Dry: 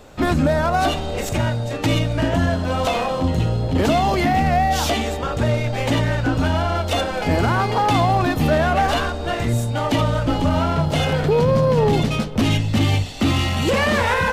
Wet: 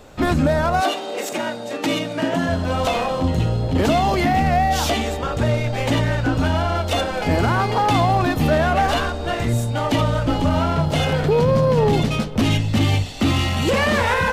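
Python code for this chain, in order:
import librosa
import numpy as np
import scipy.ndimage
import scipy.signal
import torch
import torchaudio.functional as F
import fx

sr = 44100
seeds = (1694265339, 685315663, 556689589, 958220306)

y = fx.highpass(x, sr, hz=fx.line((0.8, 310.0), (2.48, 150.0)), slope=24, at=(0.8, 2.48), fade=0.02)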